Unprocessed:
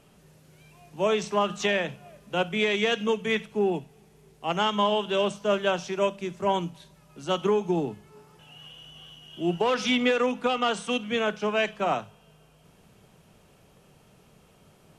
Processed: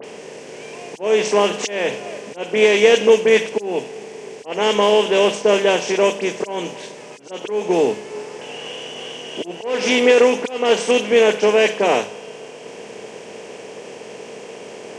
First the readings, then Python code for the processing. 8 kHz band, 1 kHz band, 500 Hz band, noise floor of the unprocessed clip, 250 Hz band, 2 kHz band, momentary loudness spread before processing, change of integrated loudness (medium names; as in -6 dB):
+13.0 dB, +4.5 dB, +11.5 dB, -58 dBFS, +5.0 dB, +8.0 dB, 11 LU, +9.5 dB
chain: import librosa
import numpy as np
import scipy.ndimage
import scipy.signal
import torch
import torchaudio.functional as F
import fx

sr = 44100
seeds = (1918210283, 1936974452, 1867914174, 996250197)

p1 = fx.bin_compress(x, sr, power=0.6)
p2 = fx.high_shelf(p1, sr, hz=2500.0, db=6.5)
p3 = fx.auto_swell(p2, sr, attack_ms=263.0)
p4 = fx.mod_noise(p3, sr, seeds[0], snr_db=22)
p5 = np.sign(p4) * np.maximum(np.abs(p4) - 10.0 ** (-42.0 / 20.0), 0.0)
p6 = p4 + F.gain(torch.from_numpy(p5), -4.0).numpy()
p7 = fx.cabinet(p6, sr, low_hz=150.0, low_slope=12, high_hz=8300.0, hz=(160.0, 460.0, 1300.0, 3600.0), db=(-8, 10, -10, -8))
y = fx.dispersion(p7, sr, late='highs', ms=42.0, hz=2800.0)